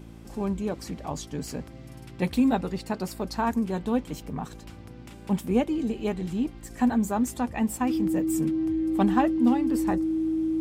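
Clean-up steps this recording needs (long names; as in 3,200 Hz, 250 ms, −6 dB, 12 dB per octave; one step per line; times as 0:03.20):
hum removal 56.2 Hz, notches 6
notch filter 320 Hz, Q 30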